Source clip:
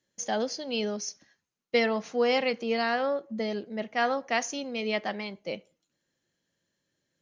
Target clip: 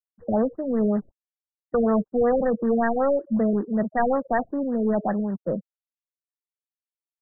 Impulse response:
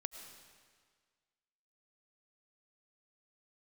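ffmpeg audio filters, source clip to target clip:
-filter_complex "[0:a]afftfilt=real='re*gte(hypot(re,im),0.02)':imag='im*gte(hypot(re,im),0.02)':win_size=1024:overlap=0.75,aeval=exprs='0.237*(cos(1*acos(clip(val(0)/0.237,-1,1)))-cos(1*PI/2))+0.0119*(cos(2*acos(clip(val(0)/0.237,-1,1)))-cos(2*PI/2))+0.0119*(cos(3*acos(clip(val(0)/0.237,-1,1)))-cos(3*PI/2))+0.0841*(cos(5*acos(clip(val(0)/0.237,-1,1)))-cos(5*PI/2))+0.00422*(cos(8*acos(clip(val(0)/0.237,-1,1)))-cos(8*PI/2))':c=same,bass=f=250:g=10,treble=f=4k:g=-12,acrossover=split=200|480|1700[a][b][c][d];[b]asoftclip=type=tanh:threshold=-24.5dB[e];[a][e][c][d]amix=inputs=4:normalize=0,acrusher=bits=4:mode=log:mix=0:aa=0.000001,afftfilt=real='re*lt(b*sr/1024,620*pow(2000/620,0.5+0.5*sin(2*PI*5.3*pts/sr)))':imag='im*lt(b*sr/1024,620*pow(2000/620,0.5+0.5*sin(2*PI*5.3*pts/sr)))':win_size=1024:overlap=0.75"

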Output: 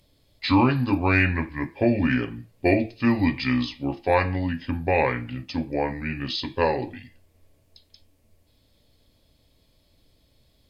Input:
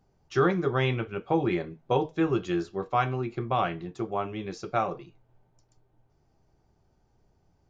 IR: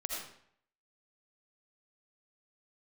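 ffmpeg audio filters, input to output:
-af "aexciter=amount=3.8:drive=5.8:freq=2.7k,asetrate=31752,aresample=44100,volume=4dB"

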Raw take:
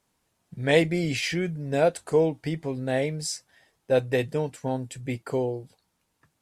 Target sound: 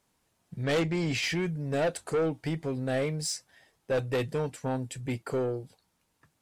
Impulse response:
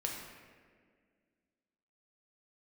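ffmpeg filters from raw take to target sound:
-filter_complex "[0:a]asettb=1/sr,asplit=3[a][b][c];[a]atrim=end=0.634[d];[b]atrim=start=0.63:end=1.28,asetpts=PTS-STARTPTS,afade=t=in:d=0.004:c=qsin,afade=t=out:st=0.646:d=0.004:c=qsin,lowpass=f=7.9k:w=0.5412,lowpass=f=7.9k:w=1.3066[e];[c]atrim=start=1.276[f];[d][e]acrossfade=d=0.004:c1=hsin:c2=qsin[g];[g][f]acrossfade=d=0.004:c1=qsin:c2=hsin,asoftclip=type=tanh:threshold=-23dB"

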